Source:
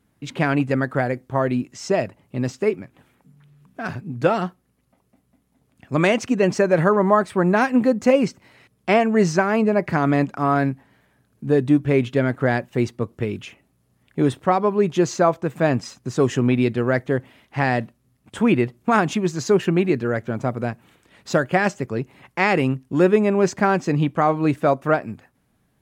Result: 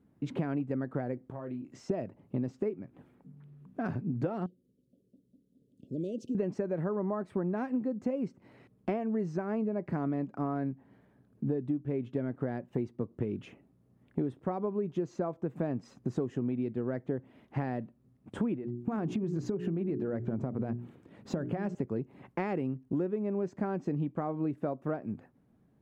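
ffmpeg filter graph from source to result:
ffmpeg -i in.wav -filter_complex "[0:a]asettb=1/sr,asplit=3[link_01][link_02][link_03];[link_01]atrim=end=1.304[link_04];[link_02]atrim=start=1.3:end=1.89,asetpts=PTS-STARTPTS,afade=type=in:duration=0.004:curve=qsin,afade=type=out:start_time=0.586:duration=0.004:curve=qsin,acompressor=threshold=-36dB:ratio=4:attack=3.2:release=140:knee=1:detection=peak,lowshelf=frequency=370:gain=-5.5,asplit=2[link_05][link_06];[link_06]adelay=31,volume=-7dB[link_07];[link_05][link_07]amix=inputs=2:normalize=0,atrim=end_sample=26019[link_08];[link_03]atrim=start=1.886[link_09];[link_04][link_08]acrossfade=duration=0.004:curve1=hsin:curve2=qsin[link_10];[link_10][link_09]acrossfade=duration=0.004:curve1=qsin:curve2=hsin,asettb=1/sr,asplit=3[link_11][link_12][link_13];[link_11]atrim=end=4.464[link_14];[link_12]atrim=start=4.46:end=6.35,asetpts=PTS-STARTPTS,afade=type=in:duration=0.004:curve=qsin,afade=type=out:start_time=1.886:duration=0.004:curve=qsin,lowshelf=frequency=120:gain=-11.5,acompressor=threshold=-39dB:ratio=2:attack=3.2:release=140:knee=1:detection=peak,asuperstop=centerf=1300:order=12:qfactor=0.52[link_15];[link_13]atrim=start=6.346[link_16];[link_14][link_15]acrossfade=duration=0.004:curve1=hsin:curve2=qsin[link_17];[link_17][link_16]acrossfade=duration=0.004:curve1=qsin:curve2=hsin,asettb=1/sr,asplit=3[link_18][link_19][link_20];[link_18]atrim=end=18.554[link_21];[link_19]atrim=start=18.55:end=21.75,asetpts=PTS-STARTPTS,afade=type=in:duration=0.004:curve=qsin,afade=type=out:start_time=3.196:duration=0.004:curve=qsin,lowshelf=frequency=350:gain=6.5,bandreject=frequency=60:width_type=h:width=6,bandreject=frequency=120:width_type=h:width=6,bandreject=frequency=180:width_type=h:width=6,bandreject=frequency=240:width_type=h:width=6,bandreject=frequency=300:width_type=h:width=6,bandreject=frequency=360:width_type=h:width=6,bandreject=frequency=420:width_type=h:width=6,acompressor=threshold=-23dB:ratio=4:attack=3.2:release=140:knee=1:detection=peak[link_22];[link_20]atrim=start=21.746[link_23];[link_21][link_22]acrossfade=duration=0.004:curve1=hsin:curve2=qsin[link_24];[link_24][link_23]acrossfade=duration=0.004:curve1=qsin:curve2=hsin,equalizer=frequency=260:width_type=o:width=2.7:gain=9.5,acompressor=threshold=-21dB:ratio=12,highshelf=frequency=2200:gain=-11.5,volume=-7.5dB" out.wav

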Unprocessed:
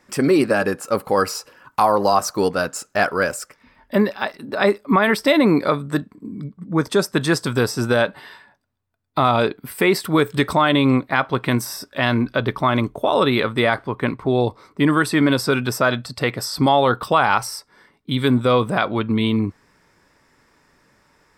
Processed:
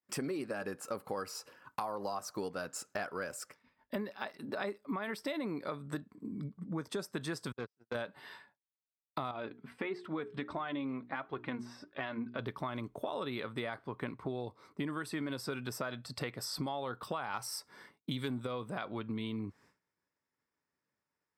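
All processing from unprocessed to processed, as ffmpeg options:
ffmpeg -i in.wav -filter_complex "[0:a]asettb=1/sr,asplit=3[link_01][link_02][link_03];[link_01]atrim=end=7.524[link_04];[link_02]atrim=start=7.52:end=7.95,asetpts=PTS-STARTPTS,afade=type=in:duration=0.004:curve=qsin,afade=type=out:start_time=0.426:duration=0.004:curve=qsin,agate=range=-51dB:threshold=-16dB:ratio=16:release=100:detection=peak,highpass=100,lowpass=3800,aeval=exprs='(tanh(8.91*val(0)+0.45)-tanh(0.45))/8.91':channel_layout=same[link_05];[link_03]atrim=start=7.946[link_06];[link_04][link_05]acrossfade=duration=0.004:curve1=hsin:curve2=qsin[link_07];[link_07][link_06]acrossfade=duration=0.004:curve1=qsin:curve2=hsin,asettb=1/sr,asplit=3[link_08][link_09][link_10];[link_08]atrim=end=9.314[link_11];[link_09]atrim=start=9.31:end=12.39,asetpts=PTS-STARTPTS,afade=type=in:duration=0.004:curve=qsin,afade=type=out:start_time=3.076:duration=0.004:curve=qsin,bandreject=frequency=60:width_type=h:width=6,bandreject=frequency=120:width_type=h:width=6,bandreject=frequency=180:width_type=h:width=6,bandreject=frequency=240:width_type=h:width=6,bandreject=frequency=300:width_type=h:width=6,bandreject=frequency=360:width_type=h:width=6,bandreject=frequency=420:width_type=h:width=6,flanger=delay=2.4:depth=2.4:regen=31:speed=1.5:shape=triangular,lowpass=2900[link_12];[link_10]atrim=start=12.386[link_13];[link_11][link_12]acrossfade=duration=0.004:curve1=hsin:curve2=qsin[link_14];[link_14][link_13]acrossfade=duration=0.004:curve1=qsin:curve2=hsin,asettb=1/sr,asplit=3[link_15][link_16][link_17];[link_15]atrim=end=17.344[link_18];[link_16]atrim=start=17.34:end=18.47,asetpts=PTS-STARTPTS,afade=type=in:duration=0.004:curve=qsin,afade=type=out:start_time=1.126:duration=0.004:curve=qsin,highshelf=frequency=5500:gain=4,acontrast=33[link_19];[link_17]atrim=start=18.466[link_20];[link_18][link_19]acrossfade=duration=0.004:curve1=hsin:curve2=qsin[link_21];[link_21][link_20]acrossfade=duration=0.004:curve1=qsin:curve2=hsin,agate=range=-33dB:threshold=-44dB:ratio=3:detection=peak,highpass=80,acompressor=threshold=-27dB:ratio=6,volume=-8.5dB" out.wav

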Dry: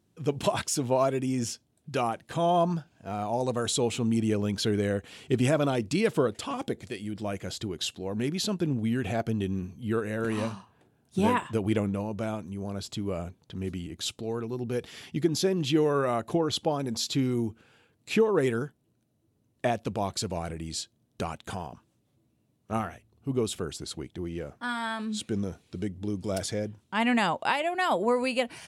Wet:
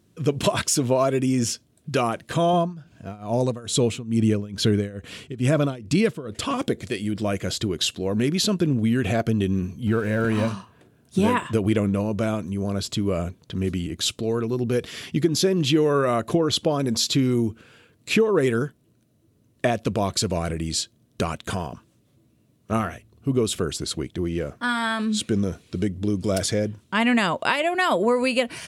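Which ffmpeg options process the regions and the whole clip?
ffmpeg -i in.wav -filter_complex "[0:a]asettb=1/sr,asplit=3[link_01][link_02][link_03];[link_01]atrim=end=2.534[link_04];[link_02]atrim=start=2.53:end=6.45,asetpts=PTS-STARTPTS,afade=type=in:duration=0.004:curve=qsin,afade=type=out:start_time=3.916:duration=0.004:curve=qsin,bass=frequency=250:gain=5,treble=frequency=4000:gain=-1,tremolo=f=2.3:d=0.93[link_05];[link_03]atrim=start=6.446[link_06];[link_04][link_05]acrossfade=duration=0.004:curve1=hsin:curve2=qsin[link_07];[link_07][link_06]acrossfade=duration=0.004:curve1=qsin:curve2=hsin,asettb=1/sr,asplit=3[link_08][link_09][link_10];[link_08]atrim=end=9.874[link_11];[link_09]atrim=start=9.87:end=10.48,asetpts=PTS-STARTPTS,afade=type=in:duration=0.004:curve=qsin,afade=type=out:start_time=0.606:duration=0.004:curve=qsin,aeval=exprs='val(0)+0.5*0.00794*sgn(val(0))':channel_layout=same,highshelf=frequency=3300:gain=-8,aecho=1:1:1.3:0.32,atrim=end_sample=26901[link_12];[link_10]atrim=start=10.476[link_13];[link_11][link_12]acrossfade=duration=0.004:curve1=hsin:curve2=qsin[link_14];[link_14][link_13]acrossfade=duration=0.004:curve1=qsin:curve2=hsin,equalizer=frequency=820:width_type=o:width=0.2:gain=-12,acompressor=threshold=-28dB:ratio=2,volume=9dB" out.wav

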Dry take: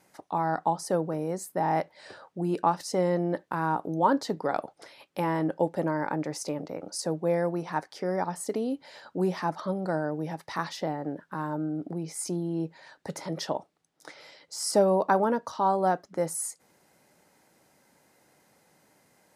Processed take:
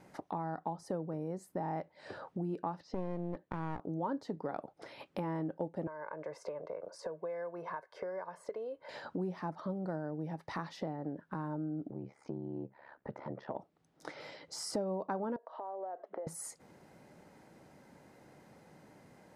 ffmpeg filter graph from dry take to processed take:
ffmpeg -i in.wav -filter_complex "[0:a]asettb=1/sr,asplit=3[link_01][link_02][link_03];[link_01]atrim=end=2.804[link_04];[link_02]atrim=start=2.8:end=3.81,asetpts=PTS-STARTPTS,afade=type=in:duration=0.004:curve=qsin,afade=type=out:start_time=1.006:duration=0.004:curve=qsin,lowpass=frequency=4600:width=0.5412,lowpass=frequency=4600:width=1.3066,aeval=exprs='clip(val(0),-1,0.0133)':channel_layout=same[link_05];[link_03]atrim=start=3.806[link_06];[link_04][link_05]acrossfade=duration=0.004:curve1=hsin:curve2=qsin[link_07];[link_07][link_06]acrossfade=duration=0.004:curve1=qsin:curve2=hsin,asettb=1/sr,asplit=3[link_08][link_09][link_10];[link_08]atrim=end=5.874[link_11];[link_09]atrim=start=5.87:end=8.89,asetpts=PTS-STARTPTS,afade=type=in:duration=0.004:curve=qsin,afade=type=out:start_time=3.016:duration=0.004:curve=qsin,acrossover=split=440 2000:gain=0.141 1 0.2[link_12][link_13][link_14];[link_12][link_13][link_14]amix=inputs=3:normalize=0,acrossover=split=1300|7400[link_15][link_16][link_17];[link_15]acompressor=threshold=-39dB:ratio=4[link_18];[link_16]acompressor=threshold=-44dB:ratio=4[link_19];[link_17]acompressor=threshold=-58dB:ratio=4[link_20];[link_18][link_19][link_20]amix=inputs=3:normalize=0,aecho=1:1:1.9:0.69,atrim=end_sample=133182[link_21];[link_10]atrim=start=8.886[link_22];[link_11][link_21]acrossfade=duration=0.004:curve1=hsin:curve2=qsin[link_23];[link_23][link_22]acrossfade=duration=0.004:curve1=qsin:curve2=hsin,asettb=1/sr,asplit=3[link_24][link_25][link_26];[link_24]atrim=end=11.904[link_27];[link_25]atrim=start=11.9:end=13.56,asetpts=PTS-STARTPTS,afade=type=in:duration=0.004:curve=qsin,afade=type=out:start_time=1.656:duration=0.004:curve=qsin,lowpass=1600,lowshelf=frequency=370:gain=-10,aeval=exprs='val(0)*sin(2*PI*35*n/s)':channel_layout=same[link_28];[link_26]atrim=start=13.556[link_29];[link_27][link_28]acrossfade=duration=0.004:curve1=hsin:curve2=qsin[link_30];[link_30][link_29]acrossfade=duration=0.004:curve1=qsin:curve2=hsin,asettb=1/sr,asplit=3[link_31][link_32][link_33];[link_31]atrim=end=15.364[link_34];[link_32]atrim=start=15.36:end=16.27,asetpts=PTS-STARTPTS,afade=type=in:duration=0.004:curve=qsin,afade=type=out:start_time=0.906:duration=0.004:curve=qsin,acompressor=threshold=-38dB:ratio=12:attack=3.2:release=140:knee=1:detection=peak,highpass=frequency=390:width=0.5412,highpass=frequency=390:width=1.3066,equalizer=frequency=460:width_type=q:width=4:gain=4,equalizer=frequency=660:width_type=q:width=4:gain=9,equalizer=frequency=1400:width_type=q:width=4:gain=-4,equalizer=frequency=2400:width_type=q:width=4:gain=-6,lowpass=frequency=2900:width=0.5412,lowpass=frequency=2900:width=1.3066[link_35];[link_33]atrim=start=16.266[link_36];[link_34][link_35]acrossfade=duration=0.004:curve1=hsin:curve2=qsin[link_37];[link_37][link_36]acrossfade=duration=0.004:curve1=qsin:curve2=hsin,lowpass=frequency=1100:poles=1,equalizer=frequency=860:width=0.33:gain=-4.5,acompressor=threshold=-51dB:ratio=3,volume=10.5dB" out.wav

